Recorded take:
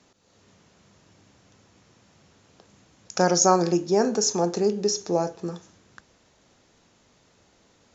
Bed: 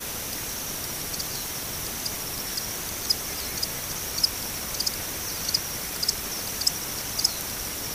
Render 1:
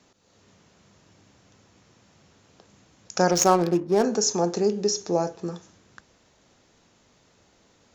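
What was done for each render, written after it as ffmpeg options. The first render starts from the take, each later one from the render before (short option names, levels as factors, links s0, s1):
-filter_complex "[0:a]asettb=1/sr,asplit=3[s0][s1][s2];[s0]atrim=end=3.314[s3];[s1]atrim=start=3.31:end=4.04,asetpts=PTS-STARTPTS,afade=t=in:d=0.004:c=qsin,afade=t=out:st=0.726:d=0.004:c=qsin,adynamicsmooth=sensitivity=4:basefreq=790[s4];[s2]atrim=start=4.036[s5];[s3][s4]acrossfade=d=0.004:c1=hsin:c2=qsin[s6];[s6][s5]acrossfade=d=0.004:c1=qsin:c2=hsin"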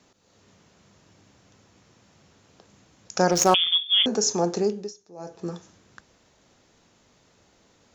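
-filter_complex "[0:a]asettb=1/sr,asplit=3[s0][s1][s2];[s0]atrim=end=3.544[s3];[s1]atrim=start=3.54:end=4.06,asetpts=PTS-STARTPTS,afade=t=in:d=0.004:c=qsin,afade=t=out:st=0.516:d=0.004:c=qsin,lowpass=f=3100:t=q:w=0.5098,lowpass=f=3100:t=q:w=0.6013,lowpass=f=3100:t=q:w=0.9,lowpass=f=3100:t=q:w=2.563,afreqshift=-3700[s4];[s2]atrim=start=4.056[s5];[s3][s4]acrossfade=d=0.004:c1=hsin:c2=qsin[s6];[s6][s5]acrossfade=d=0.004:c1=qsin:c2=hsin,asplit=3[s7][s8][s9];[s7]atrim=end=4.94,asetpts=PTS-STARTPTS,afade=t=out:st=4.61:d=0.33:silence=0.0749894[s10];[s8]atrim=start=4.94:end=5.16,asetpts=PTS-STARTPTS,volume=0.075[s11];[s9]atrim=start=5.16,asetpts=PTS-STARTPTS,afade=t=in:d=0.33:silence=0.0749894[s12];[s10][s11][s12]concat=n=3:v=0:a=1"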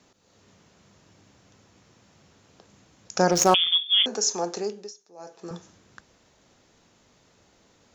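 -filter_complex "[0:a]asettb=1/sr,asplit=3[s0][s1][s2];[s0]atrim=end=3.884[s3];[s1]atrim=start=3.88:end=5.51,asetpts=PTS-STARTPTS,afade=t=in:d=0.004:c=qsin,afade=t=out:st=1.626:d=0.004:c=qsin,highpass=f=680:p=1[s4];[s2]atrim=start=5.506[s5];[s3][s4]acrossfade=d=0.004:c1=hsin:c2=qsin[s6];[s6][s5]acrossfade=d=0.004:c1=qsin:c2=hsin"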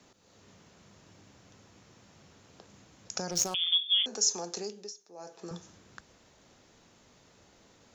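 -filter_complex "[0:a]alimiter=limit=0.188:level=0:latency=1:release=283,acrossover=split=130|3000[s0][s1][s2];[s1]acompressor=threshold=0.00631:ratio=2[s3];[s0][s3][s2]amix=inputs=3:normalize=0"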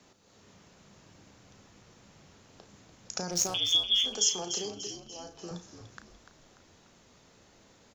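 -filter_complex "[0:a]asplit=2[s0][s1];[s1]adelay=34,volume=0.299[s2];[s0][s2]amix=inputs=2:normalize=0,asplit=6[s3][s4][s5][s6][s7][s8];[s4]adelay=293,afreqshift=-65,volume=0.316[s9];[s5]adelay=586,afreqshift=-130,volume=0.151[s10];[s6]adelay=879,afreqshift=-195,volume=0.0724[s11];[s7]adelay=1172,afreqshift=-260,volume=0.0351[s12];[s8]adelay=1465,afreqshift=-325,volume=0.0168[s13];[s3][s9][s10][s11][s12][s13]amix=inputs=6:normalize=0"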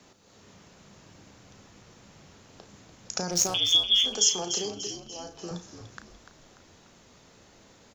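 -af "volume=1.58"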